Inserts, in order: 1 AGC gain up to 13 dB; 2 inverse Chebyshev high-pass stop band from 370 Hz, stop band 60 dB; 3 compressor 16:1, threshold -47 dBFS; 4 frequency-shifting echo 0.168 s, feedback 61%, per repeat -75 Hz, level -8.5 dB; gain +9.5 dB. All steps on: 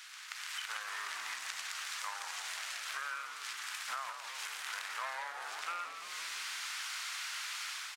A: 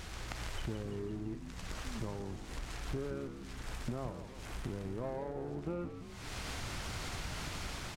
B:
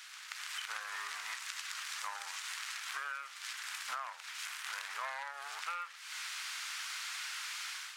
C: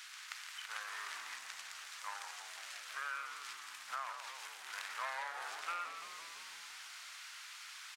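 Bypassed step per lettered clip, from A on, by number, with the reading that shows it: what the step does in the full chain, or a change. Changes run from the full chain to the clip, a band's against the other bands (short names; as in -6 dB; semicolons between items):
2, 500 Hz band +23.0 dB; 4, echo-to-direct -6.5 dB to none; 1, momentary loudness spread change +4 LU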